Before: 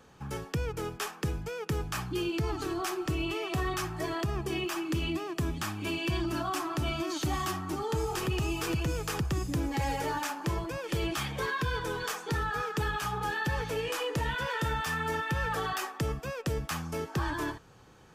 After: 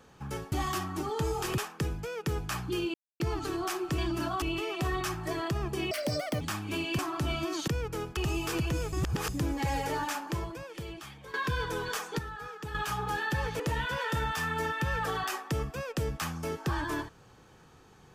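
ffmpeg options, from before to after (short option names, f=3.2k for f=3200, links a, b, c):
-filter_complex "[0:a]asplit=17[a][b][c][d][e][f][g][h][i][j][k][l][m][n][o][p][q];[a]atrim=end=0.522[r];[b]atrim=start=7.248:end=8.312[s];[c]atrim=start=1.008:end=2.37,asetpts=PTS-STARTPTS,afade=t=out:st=1.358:d=0.004:c=hsin,apad=pad_dur=0.26[t];[d]atrim=start=2.37:end=3.152,asetpts=PTS-STARTPTS,afade=t=in:d=0.004:c=hsin[u];[e]atrim=start=6.118:end=6.562[v];[f]atrim=start=3.148:end=4.644[w];[g]atrim=start=4.64:end=5.54,asetpts=PTS-STARTPTS,asetrate=79821,aresample=44100,atrim=end_sample=21928,asetpts=PTS-STARTPTS[x];[h]atrim=start=5.536:end=6.122[y];[i]atrim=start=6.558:end=7.252[z];[j]atrim=start=0.518:end=1.012[aa];[k]atrim=start=8.308:end=9.072[ab];[l]atrim=start=9.068:end=9.432,asetpts=PTS-STARTPTS,areverse[ac];[m]atrim=start=9.428:end=11.48,asetpts=PTS-STARTPTS,afade=t=out:st=0.902:d=1.15:c=qua:silence=0.188365[ad];[n]atrim=start=11.48:end=12.332,asetpts=PTS-STARTPTS,afade=t=in:d=0.004:c=hsin:silence=0.188365[ae];[o]atrim=start=12.328:end=12.892,asetpts=PTS-STARTPTS,volume=-9dB[af];[p]atrim=start=12.888:end=13.742[ag];[q]atrim=start=14.088[ah];[r][s]acrossfade=d=0.004:c1=hsin:c2=hsin[ai];[t][u]concat=n=2:v=0:a=1[aj];[ai][aj]acrossfade=d=0.004:c1=hsin:c2=hsin[ak];[ak][v]acrossfade=d=0.004:c1=hsin:c2=hsin[al];[al][w]acrossfade=d=0.004:c1=hsin:c2=hsin[am];[am][x]acrossfade=d=0.004:c1=hsin:c2=hsin[an];[an][y]acrossfade=d=0.004:c1=hsin:c2=hsin[ao];[ao][z]acrossfade=d=0.004:c1=hsin:c2=hsin[ap];[ap][aa]acrossfade=d=0.004:c1=hsin:c2=hsin[aq];[aq][ab]acrossfade=d=0.004:c1=hsin:c2=hsin[ar];[ar][ac]acrossfade=d=0.004:c1=hsin:c2=hsin[as];[ad][ae]concat=n=2:v=0:a=1[at];[as][at]acrossfade=d=0.004:c1=hsin:c2=hsin[au];[au][af]acrossfade=d=0.004:c1=hsin:c2=hsin[av];[av][ag]acrossfade=d=0.004:c1=hsin:c2=hsin[aw];[aw][ah]acrossfade=d=0.004:c1=hsin:c2=hsin"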